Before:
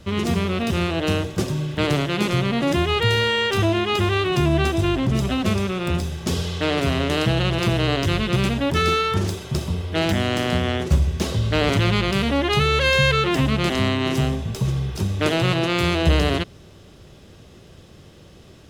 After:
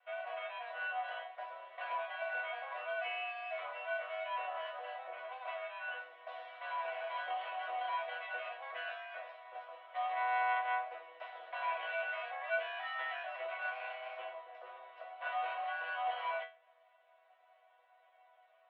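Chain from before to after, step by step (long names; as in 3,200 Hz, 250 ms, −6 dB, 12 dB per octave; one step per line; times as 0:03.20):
lower of the sound and its delayed copy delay 2.4 ms
single-sideband voice off tune +250 Hz 330–2,600 Hz
resonators tuned to a chord B3 sus4, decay 0.31 s
level +2.5 dB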